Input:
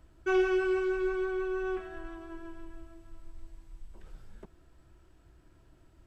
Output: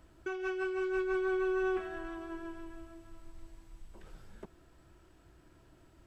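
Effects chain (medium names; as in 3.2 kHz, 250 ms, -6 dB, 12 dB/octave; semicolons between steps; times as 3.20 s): bass shelf 93 Hz -8 dB; compressor with a negative ratio -33 dBFS, ratio -1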